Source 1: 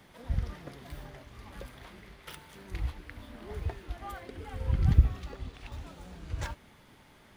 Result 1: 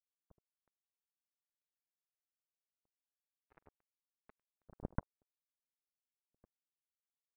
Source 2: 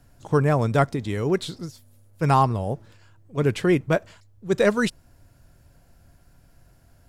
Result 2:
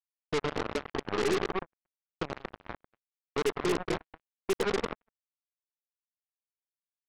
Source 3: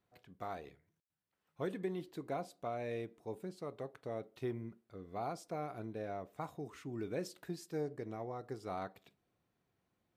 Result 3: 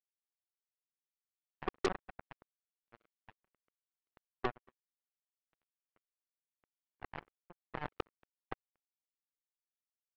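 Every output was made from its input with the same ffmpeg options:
ffmpeg -i in.wav -af "bandreject=frequency=50:width_type=h:width=6,bandreject=frequency=100:width_type=h:width=6,afftfilt=real='re*gte(hypot(re,im),0.0355)':imag='im*gte(hypot(re,im),0.0355)':win_size=1024:overlap=0.75,equalizer=frequency=120:width_type=o:width=0.32:gain=-13.5,acompressor=threshold=-33dB:ratio=4,lowpass=frequency=410:width_type=q:width=3.8,aecho=1:1:102|233.2:0.501|0.562,acrusher=bits=3:mix=0:aa=0.5,aeval=exprs='0.15*(cos(1*acos(clip(val(0)/0.15,-1,1)))-cos(1*PI/2))+0.00422*(cos(5*acos(clip(val(0)/0.15,-1,1)))-cos(5*PI/2))+0.0299*(cos(6*acos(clip(val(0)/0.15,-1,1)))-cos(6*PI/2))+0.0335*(cos(7*acos(clip(val(0)/0.15,-1,1)))-cos(7*PI/2))':channel_layout=same,volume=-5dB" out.wav

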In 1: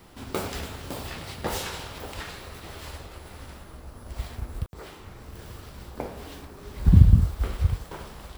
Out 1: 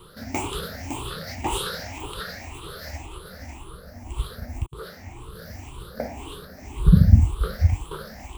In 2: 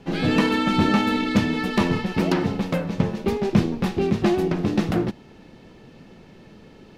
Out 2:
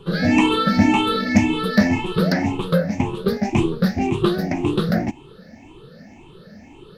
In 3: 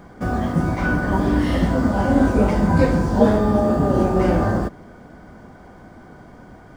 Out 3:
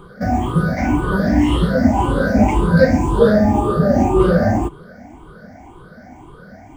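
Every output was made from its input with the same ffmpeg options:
ffmpeg -i in.wav -af "afftfilt=real='re*pow(10,20/40*sin(2*PI*(0.65*log(max(b,1)*sr/1024/100)/log(2)-(1.9)*(pts-256)/sr)))':imag='im*pow(10,20/40*sin(2*PI*(0.65*log(max(b,1)*sr/1024/100)/log(2)-(1.9)*(pts-256)/sr)))':win_size=1024:overlap=0.75,volume=-1dB" out.wav

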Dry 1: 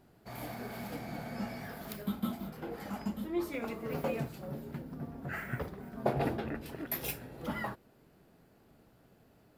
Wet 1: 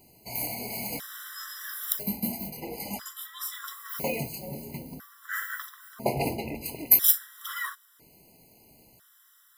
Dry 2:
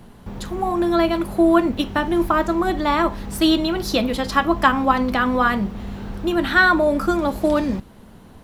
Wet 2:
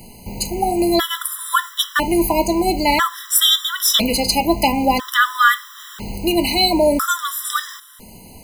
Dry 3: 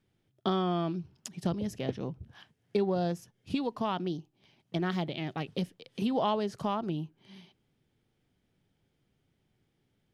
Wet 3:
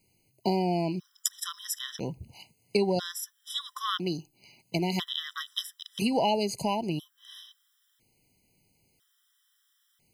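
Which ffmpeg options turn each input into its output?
ffmpeg -i in.wav -af "crystalizer=i=7:c=0,afftfilt=real='re*gt(sin(2*PI*0.5*pts/sr)*(1-2*mod(floor(b*sr/1024/1000),2)),0)':imag='im*gt(sin(2*PI*0.5*pts/sr)*(1-2*mod(floor(b*sr/1024/1000),2)),0)':win_size=1024:overlap=0.75,volume=2dB" out.wav

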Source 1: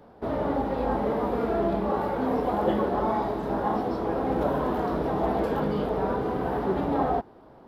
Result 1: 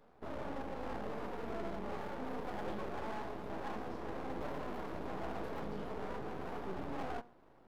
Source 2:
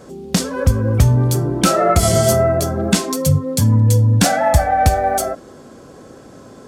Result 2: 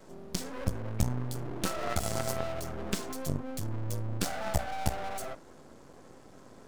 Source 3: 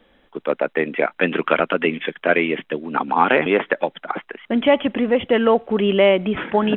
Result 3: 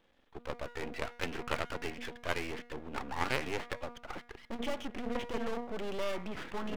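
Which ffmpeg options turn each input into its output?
ffmpeg -i in.wav -af "aeval=exprs='0.891*(cos(1*acos(clip(val(0)/0.891,-1,1)))-cos(1*PI/2))+0.0794*(cos(4*acos(clip(val(0)/0.891,-1,1)))-cos(4*PI/2))+0.0708*(cos(8*acos(clip(val(0)/0.891,-1,1)))-cos(8*PI/2))':channel_layout=same,bandreject=frequency=239.5:width_type=h:width=4,bandreject=frequency=479:width_type=h:width=4,bandreject=frequency=718.5:width_type=h:width=4,bandreject=frequency=958:width_type=h:width=4,bandreject=frequency=1197.5:width_type=h:width=4,bandreject=frequency=1437:width_type=h:width=4,bandreject=frequency=1676.5:width_type=h:width=4,bandreject=frequency=1916:width_type=h:width=4,bandreject=frequency=2155.5:width_type=h:width=4,aeval=exprs='max(val(0),0)':channel_layout=same,volume=-8.5dB" out.wav

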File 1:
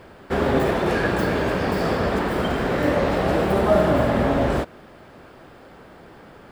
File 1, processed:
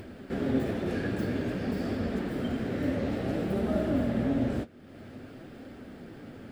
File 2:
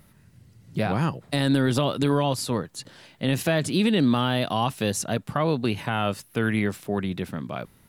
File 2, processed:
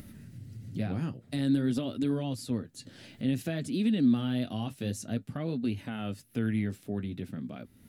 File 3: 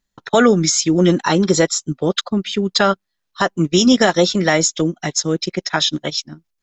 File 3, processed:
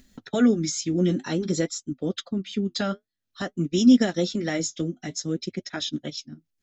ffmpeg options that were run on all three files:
ffmpeg -i in.wav -af "acompressor=mode=upward:threshold=-25dB:ratio=2.5,flanger=delay=2.8:depth=8.9:regen=-53:speed=0.52:shape=triangular,equalizer=frequency=100:width_type=o:width=0.67:gain=8,equalizer=frequency=250:width_type=o:width=0.67:gain=10,equalizer=frequency=1000:width_type=o:width=0.67:gain=-10,volume=-8.5dB" out.wav

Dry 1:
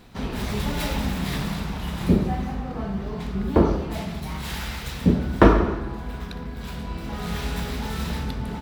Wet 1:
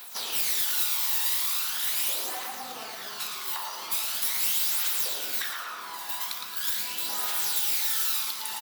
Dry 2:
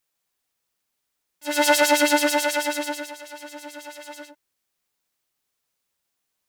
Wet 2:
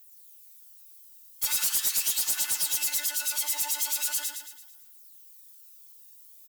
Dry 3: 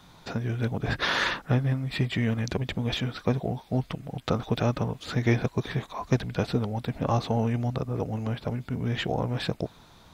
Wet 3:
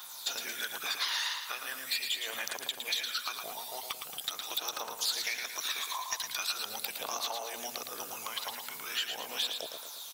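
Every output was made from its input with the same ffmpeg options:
ffmpeg -i in.wav -af "afftfilt=real='re*lt(hypot(re,im),0.282)':imag='im*lt(hypot(re,im),0.282)':win_size=1024:overlap=0.75,aphaser=in_gain=1:out_gain=1:delay=1.1:decay=0.52:speed=0.41:type=triangular,highpass=1300,equalizer=frequency=2000:width_type=o:width=0.96:gain=-5.5,acompressor=threshold=-41dB:ratio=10,aemphasis=mode=production:type=75fm,asoftclip=type=hard:threshold=-27.5dB,aecho=1:1:112|224|336|448|560|672:0.501|0.231|0.106|0.0488|0.0224|0.0103,volume=6dB" out.wav

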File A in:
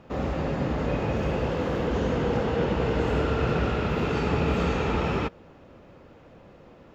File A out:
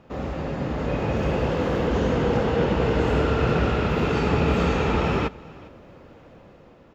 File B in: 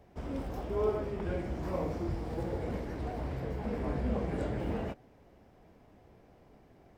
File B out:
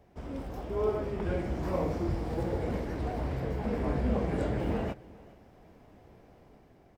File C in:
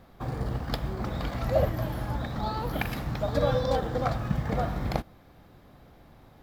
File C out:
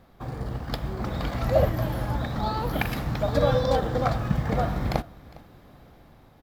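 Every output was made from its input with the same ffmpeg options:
ffmpeg -i in.wav -af "aecho=1:1:407:0.0794,dynaudnorm=framelen=110:gausssize=17:maxgain=5dB,volume=-1.5dB" out.wav

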